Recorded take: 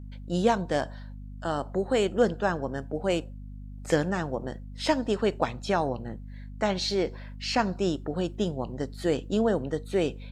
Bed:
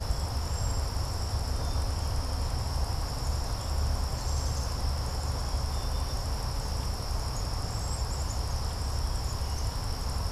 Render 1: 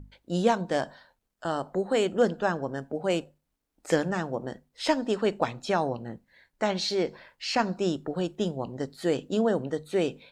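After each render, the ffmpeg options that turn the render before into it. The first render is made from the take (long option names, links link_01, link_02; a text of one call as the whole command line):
ffmpeg -i in.wav -af "bandreject=frequency=50:width_type=h:width=6,bandreject=frequency=100:width_type=h:width=6,bandreject=frequency=150:width_type=h:width=6,bandreject=frequency=200:width_type=h:width=6,bandreject=frequency=250:width_type=h:width=6" out.wav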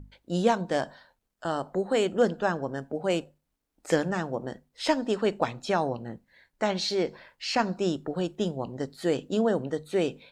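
ffmpeg -i in.wav -af anull out.wav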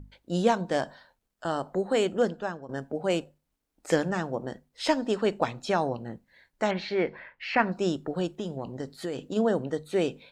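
ffmpeg -i in.wav -filter_complex "[0:a]asettb=1/sr,asplit=3[link_01][link_02][link_03];[link_01]atrim=end=6.714[link_04];[link_02]atrim=start=6.71:end=7.72,asetpts=PTS-STARTPTS,afade=type=in:duration=0.004:curve=qsin,afade=type=out:start_time=1.006:duration=0.004:curve=qsin,lowpass=frequency=2100:width_type=q:width=2.3[link_05];[link_03]atrim=start=7.716[link_06];[link_04][link_05]acrossfade=duration=0.004:curve1=hsin:curve2=qsin[link_07];[link_07][link_06]acrossfade=duration=0.004:curve1=qsin:curve2=hsin,asplit=3[link_08][link_09][link_10];[link_08]afade=type=out:start_time=8.37:duration=0.02[link_11];[link_09]acompressor=threshold=-28dB:ratio=6:attack=3.2:release=140:knee=1:detection=peak,afade=type=in:start_time=8.37:duration=0.02,afade=type=out:start_time=9.35:duration=0.02[link_12];[link_10]afade=type=in:start_time=9.35:duration=0.02[link_13];[link_11][link_12][link_13]amix=inputs=3:normalize=0,asplit=2[link_14][link_15];[link_14]atrim=end=2.69,asetpts=PTS-STARTPTS,afade=type=out:start_time=2.06:duration=0.63:silence=0.211349[link_16];[link_15]atrim=start=2.69,asetpts=PTS-STARTPTS,afade=type=in:duration=0.004:curve=hsin:silence=0.211349[link_17];[link_16][link_17]concat=n=2:v=0:a=1" out.wav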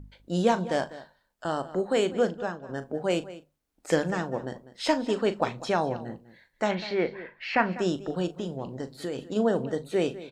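ffmpeg -i in.wav -filter_complex "[0:a]asplit=2[link_01][link_02];[link_02]adelay=39,volume=-13dB[link_03];[link_01][link_03]amix=inputs=2:normalize=0,asplit=2[link_04][link_05];[link_05]adelay=198.3,volume=-16dB,highshelf=frequency=4000:gain=-4.46[link_06];[link_04][link_06]amix=inputs=2:normalize=0" out.wav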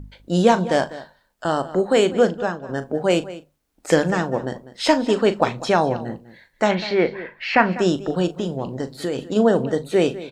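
ffmpeg -i in.wav -af "volume=8dB,alimiter=limit=-3dB:level=0:latency=1" out.wav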